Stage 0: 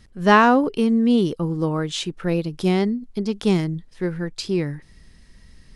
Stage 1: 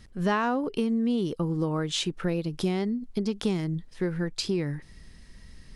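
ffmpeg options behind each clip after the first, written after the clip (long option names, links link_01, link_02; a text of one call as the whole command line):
ffmpeg -i in.wav -af "acompressor=threshold=-24dB:ratio=5" out.wav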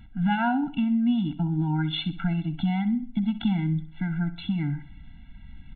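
ffmpeg -i in.wav -af "aecho=1:1:64|128|192|256:0.2|0.0778|0.0303|0.0118,aresample=8000,aresample=44100,afftfilt=real='re*eq(mod(floor(b*sr/1024/330),2),0)':imag='im*eq(mod(floor(b*sr/1024/330),2),0)':win_size=1024:overlap=0.75,volume=4dB" out.wav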